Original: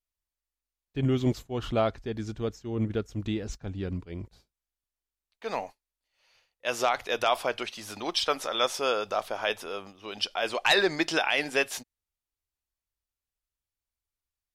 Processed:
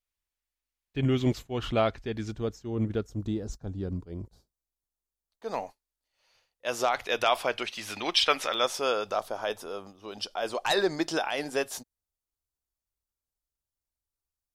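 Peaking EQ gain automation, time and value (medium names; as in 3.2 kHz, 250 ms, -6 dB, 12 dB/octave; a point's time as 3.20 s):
peaking EQ 2.4 kHz 1.3 oct
+4 dB
from 2.31 s -3.5 dB
from 3.09 s -14.5 dB
from 5.54 s -4.5 dB
from 6.93 s +2 dB
from 7.77 s +8.5 dB
from 8.54 s -2 dB
from 9.19 s -10 dB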